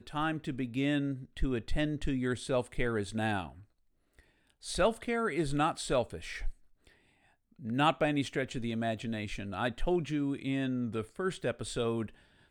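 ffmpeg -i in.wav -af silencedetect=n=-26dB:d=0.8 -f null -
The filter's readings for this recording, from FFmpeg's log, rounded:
silence_start: 3.40
silence_end: 4.76 | silence_duration: 1.36
silence_start: 6.47
silence_end: 7.73 | silence_duration: 1.26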